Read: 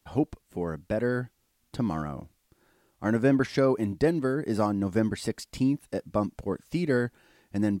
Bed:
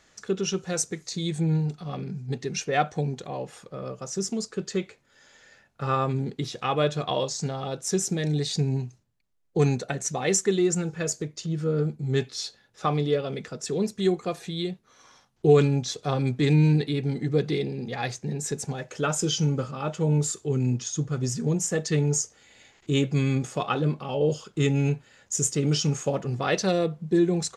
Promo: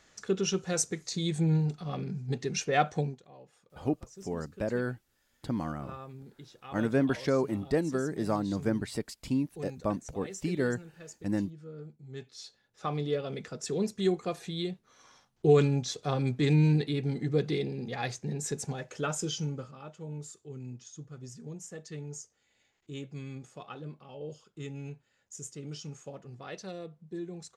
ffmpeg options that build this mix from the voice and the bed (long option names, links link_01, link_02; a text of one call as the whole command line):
ffmpeg -i stem1.wav -i stem2.wav -filter_complex "[0:a]adelay=3700,volume=-4dB[link_01];[1:a]volume=13.5dB,afade=type=out:start_time=2.99:duration=0.2:silence=0.133352,afade=type=in:start_time=12.11:duration=1.43:silence=0.16788,afade=type=out:start_time=18.74:duration=1.17:silence=0.211349[link_02];[link_01][link_02]amix=inputs=2:normalize=0" out.wav